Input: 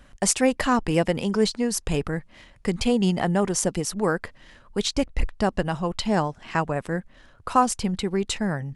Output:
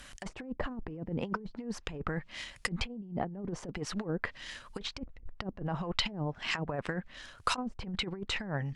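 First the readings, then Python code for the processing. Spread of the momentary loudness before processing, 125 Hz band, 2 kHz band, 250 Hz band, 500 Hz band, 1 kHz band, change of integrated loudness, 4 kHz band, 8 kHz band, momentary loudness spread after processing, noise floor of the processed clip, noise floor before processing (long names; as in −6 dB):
9 LU, −9.5 dB, −6.5 dB, −13.5 dB, −15.0 dB, −13.5 dB, −12.0 dB, −6.0 dB, −19.5 dB, 9 LU, −56 dBFS, −53 dBFS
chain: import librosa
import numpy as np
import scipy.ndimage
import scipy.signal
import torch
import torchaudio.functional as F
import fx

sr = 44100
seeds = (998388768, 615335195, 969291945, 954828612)

y = fx.env_lowpass_down(x, sr, base_hz=320.0, full_db=-18.0)
y = fx.over_compress(y, sr, threshold_db=-28.0, ratio=-0.5)
y = fx.tilt_shelf(y, sr, db=-8.0, hz=1400.0)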